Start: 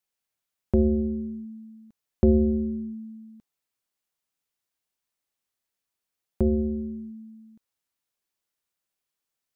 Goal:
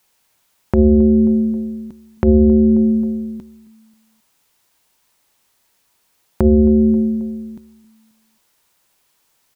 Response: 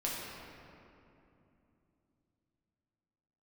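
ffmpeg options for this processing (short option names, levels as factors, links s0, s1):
-af "equalizer=f=930:w=5.3:g=5.5,aecho=1:1:268|536|804:0.0794|0.0342|0.0147,acompressor=threshold=0.0282:ratio=8,alimiter=level_in=14.1:limit=0.891:release=50:level=0:latency=1,volume=0.891"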